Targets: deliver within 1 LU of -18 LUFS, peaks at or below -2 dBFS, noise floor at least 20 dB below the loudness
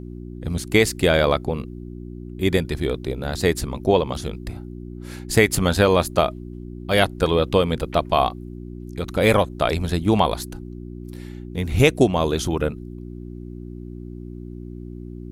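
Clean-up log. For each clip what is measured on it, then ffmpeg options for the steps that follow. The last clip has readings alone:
hum 60 Hz; harmonics up to 360 Hz; hum level -32 dBFS; loudness -21.0 LUFS; peak -2.0 dBFS; loudness target -18.0 LUFS
-> -af "bandreject=f=60:t=h:w=4,bandreject=f=120:t=h:w=4,bandreject=f=180:t=h:w=4,bandreject=f=240:t=h:w=4,bandreject=f=300:t=h:w=4,bandreject=f=360:t=h:w=4"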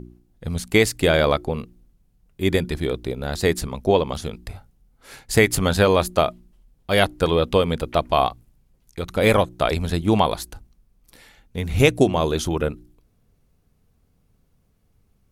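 hum none; loudness -21.0 LUFS; peak -2.5 dBFS; loudness target -18.0 LUFS
-> -af "volume=3dB,alimiter=limit=-2dB:level=0:latency=1"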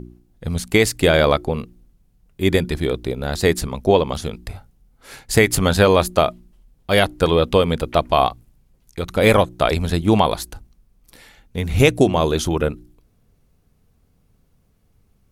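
loudness -18.5 LUFS; peak -2.0 dBFS; noise floor -61 dBFS

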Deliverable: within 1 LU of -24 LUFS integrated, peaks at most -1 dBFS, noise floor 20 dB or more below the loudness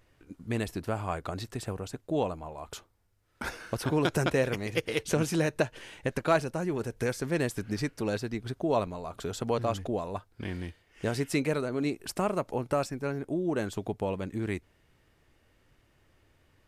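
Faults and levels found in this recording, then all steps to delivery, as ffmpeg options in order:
loudness -32.0 LUFS; peak -13.5 dBFS; loudness target -24.0 LUFS
-> -af "volume=8dB"

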